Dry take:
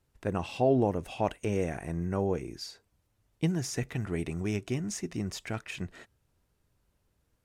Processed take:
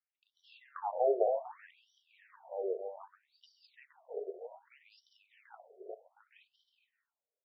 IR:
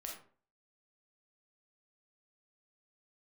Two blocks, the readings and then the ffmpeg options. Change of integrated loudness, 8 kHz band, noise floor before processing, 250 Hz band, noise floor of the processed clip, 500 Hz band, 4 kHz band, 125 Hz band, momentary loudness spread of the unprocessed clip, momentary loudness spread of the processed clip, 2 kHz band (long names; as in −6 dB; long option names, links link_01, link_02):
−3.5 dB, below −35 dB, −75 dBFS, below −20 dB, below −85 dBFS, −3.5 dB, −20.5 dB, below −40 dB, 12 LU, 21 LU, −16.5 dB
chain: -filter_complex "[0:a]afwtdn=0.0251,aecho=1:1:390|663|854.1|987.9|1082:0.631|0.398|0.251|0.158|0.1,asplit=2[link_01][link_02];[1:a]atrim=start_sample=2205[link_03];[link_02][link_03]afir=irnorm=-1:irlink=0,volume=-11.5dB[link_04];[link_01][link_04]amix=inputs=2:normalize=0,afftfilt=real='re*between(b*sr/1024,510*pow(4200/510,0.5+0.5*sin(2*PI*0.64*pts/sr))/1.41,510*pow(4200/510,0.5+0.5*sin(2*PI*0.64*pts/sr))*1.41)':imag='im*between(b*sr/1024,510*pow(4200/510,0.5+0.5*sin(2*PI*0.64*pts/sr))/1.41,510*pow(4200/510,0.5+0.5*sin(2*PI*0.64*pts/sr))*1.41)':win_size=1024:overlap=0.75"